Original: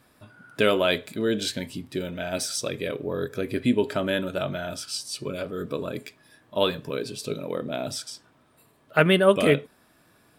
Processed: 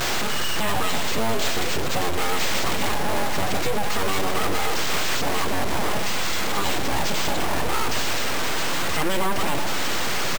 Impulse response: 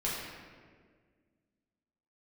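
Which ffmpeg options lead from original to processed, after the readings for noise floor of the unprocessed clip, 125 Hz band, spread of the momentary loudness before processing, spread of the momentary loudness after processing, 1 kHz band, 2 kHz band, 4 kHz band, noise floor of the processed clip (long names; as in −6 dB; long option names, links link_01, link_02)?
−61 dBFS, +1.0 dB, 12 LU, 1 LU, +9.0 dB, +5.5 dB, +6.0 dB, −21 dBFS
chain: -filter_complex "[0:a]aeval=exprs='val(0)+0.5*0.119*sgn(val(0))':channel_layout=same,aecho=1:1:4.8:0.65,alimiter=limit=-12dB:level=0:latency=1:release=46,acrusher=samples=4:mix=1:aa=0.000001,aeval=exprs='abs(val(0))':channel_layout=same,asplit=2[link_01][link_02];[1:a]atrim=start_sample=2205,adelay=97[link_03];[link_02][link_03]afir=irnorm=-1:irlink=0,volume=-18.5dB[link_04];[link_01][link_04]amix=inputs=2:normalize=0,acompressor=threshold=-19dB:ratio=2,lowshelf=frequency=75:gain=-7.5,volume=4dB"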